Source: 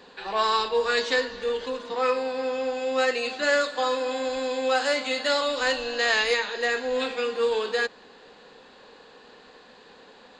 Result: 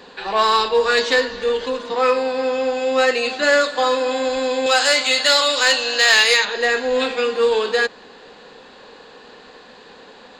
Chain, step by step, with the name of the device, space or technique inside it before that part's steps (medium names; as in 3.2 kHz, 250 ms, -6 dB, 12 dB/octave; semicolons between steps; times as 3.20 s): 4.66–6.45 s: tilt EQ +3 dB/octave; parallel distortion (in parallel at -5 dB: hard clipper -18 dBFS, distortion -14 dB); on the sum: trim +3.5 dB